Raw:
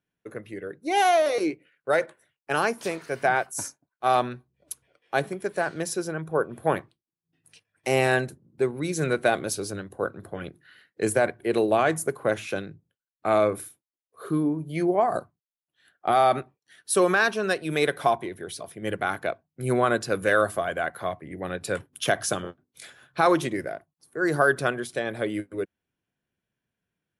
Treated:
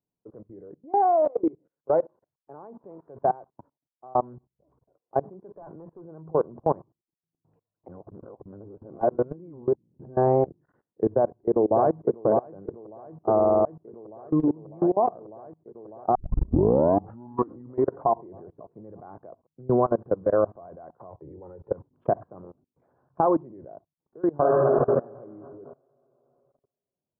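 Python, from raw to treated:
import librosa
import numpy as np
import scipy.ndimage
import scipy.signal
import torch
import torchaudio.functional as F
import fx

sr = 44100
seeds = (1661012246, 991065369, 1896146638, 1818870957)

y = fx.notch(x, sr, hz=1800.0, q=7.7, at=(1.13, 1.98))
y = fx.clip_hard(y, sr, threshold_db=-27.5, at=(5.53, 6.02))
y = fx.echo_throw(y, sr, start_s=11.12, length_s=1.14, ms=600, feedback_pct=75, wet_db=-4.5)
y = fx.comb(y, sr, ms=2.2, depth=0.82, at=(21.09, 21.71), fade=0.02)
y = fx.reverb_throw(y, sr, start_s=24.35, length_s=0.4, rt60_s=2.1, drr_db=-5.0)
y = fx.edit(y, sr, fx.clip_gain(start_s=3.48, length_s=0.67, db=-11.0),
    fx.reverse_span(start_s=7.88, length_s=2.58),
    fx.stutter_over(start_s=13.35, slice_s=0.05, count=6),
    fx.tape_start(start_s=16.15, length_s=1.89), tone=tone)
y = scipy.signal.sosfilt(scipy.signal.cheby1(4, 1.0, 1000.0, 'lowpass', fs=sr, output='sos'), y)
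y = fx.level_steps(y, sr, step_db=24)
y = y * librosa.db_to_amplitude(4.5)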